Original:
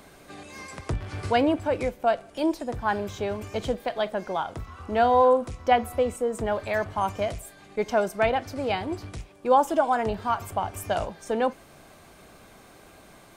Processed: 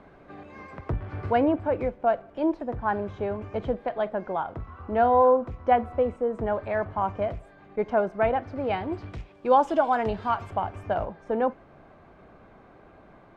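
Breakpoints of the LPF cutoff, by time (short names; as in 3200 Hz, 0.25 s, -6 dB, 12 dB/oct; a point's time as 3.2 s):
8.38 s 1600 Hz
9.54 s 3900 Hz
10.24 s 3900 Hz
10.98 s 1500 Hz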